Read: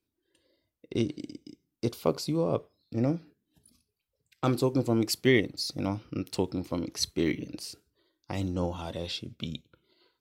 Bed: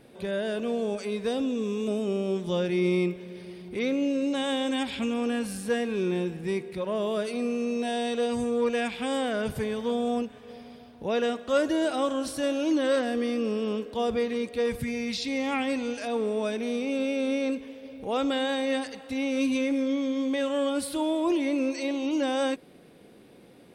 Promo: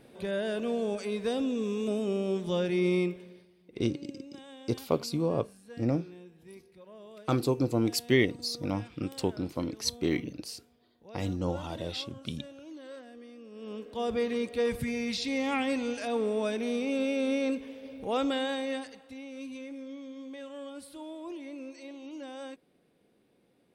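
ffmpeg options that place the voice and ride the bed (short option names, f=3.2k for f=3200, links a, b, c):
-filter_complex "[0:a]adelay=2850,volume=-1dB[a];[1:a]volume=17.5dB,afade=t=out:st=2.99:d=0.49:silence=0.112202,afade=t=in:st=13.51:d=0.78:silence=0.105925,afade=t=out:st=18.15:d=1.07:silence=0.199526[b];[a][b]amix=inputs=2:normalize=0"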